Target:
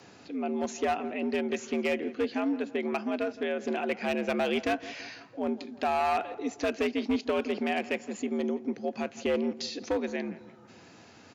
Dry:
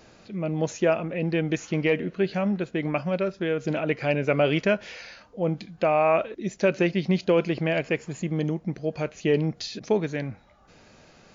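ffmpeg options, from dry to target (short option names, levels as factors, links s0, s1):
-filter_complex "[0:a]equalizer=f=520:t=o:w=0.24:g=-7.5,asplit=2[s0][s1];[s1]acompressor=threshold=0.0178:ratio=10,volume=0.841[s2];[s0][s2]amix=inputs=2:normalize=0,afreqshift=75,asoftclip=type=hard:threshold=0.141,asplit=2[s3][s4];[s4]adelay=167,lowpass=f=2100:p=1,volume=0.158,asplit=2[s5][s6];[s6]adelay=167,lowpass=f=2100:p=1,volume=0.51,asplit=2[s7][s8];[s8]adelay=167,lowpass=f=2100:p=1,volume=0.51,asplit=2[s9][s10];[s10]adelay=167,lowpass=f=2100:p=1,volume=0.51,asplit=2[s11][s12];[s12]adelay=167,lowpass=f=2100:p=1,volume=0.51[s13];[s3][s5][s7][s9][s11][s13]amix=inputs=6:normalize=0,volume=0.562"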